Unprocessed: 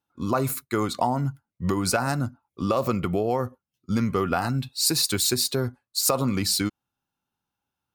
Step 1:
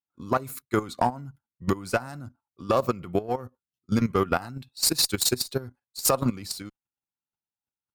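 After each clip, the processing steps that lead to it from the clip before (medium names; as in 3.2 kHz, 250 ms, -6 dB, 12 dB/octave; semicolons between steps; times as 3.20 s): single-diode clipper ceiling -15 dBFS; level held to a coarse grid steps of 12 dB; upward expansion 1.5:1, over -46 dBFS; trim +4 dB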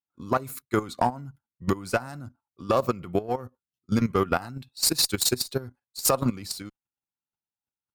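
no audible change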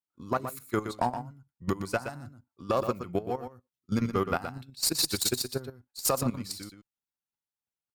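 delay 121 ms -9 dB; trim -4.5 dB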